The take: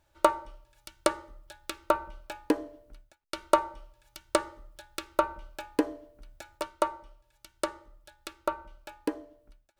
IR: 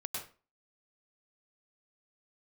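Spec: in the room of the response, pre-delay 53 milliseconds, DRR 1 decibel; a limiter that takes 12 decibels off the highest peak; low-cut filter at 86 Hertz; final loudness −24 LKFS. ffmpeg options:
-filter_complex "[0:a]highpass=86,alimiter=limit=-16dB:level=0:latency=1,asplit=2[link_01][link_02];[1:a]atrim=start_sample=2205,adelay=53[link_03];[link_02][link_03]afir=irnorm=-1:irlink=0,volume=-2dB[link_04];[link_01][link_04]amix=inputs=2:normalize=0,volume=12.5dB"

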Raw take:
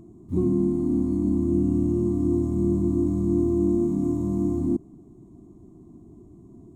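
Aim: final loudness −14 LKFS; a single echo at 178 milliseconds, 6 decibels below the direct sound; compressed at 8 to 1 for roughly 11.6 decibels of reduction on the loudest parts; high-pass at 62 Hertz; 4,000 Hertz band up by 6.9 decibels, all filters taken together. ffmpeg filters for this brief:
ffmpeg -i in.wav -af "highpass=62,equalizer=frequency=4000:width_type=o:gain=8.5,acompressor=threshold=-31dB:ratio=8,aecho=1:1:178:0.501,volume=20dB" out.wav

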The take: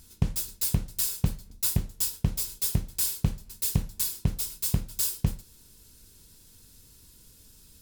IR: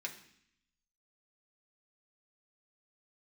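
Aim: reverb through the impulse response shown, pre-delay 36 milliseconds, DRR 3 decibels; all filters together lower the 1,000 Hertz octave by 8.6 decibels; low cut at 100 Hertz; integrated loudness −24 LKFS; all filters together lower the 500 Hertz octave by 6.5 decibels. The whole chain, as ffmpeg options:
-filter_complex "[0:a]highpass=100,equalizer=frequency=500:width_type=o:gain=-6.5,equalizer=frequency=1000:width_type=o:gain=-9,asplit=2[link_01][link_02];[1:a]atrim=start_sample=2205,adelay=36[link_03];[link_02][link_03]afir=irnorm=-1:irlink=0,volume=-3dB[link_04];[link_01][link_04]amix=inputs=2:normalize=0,volume=4.5dB"

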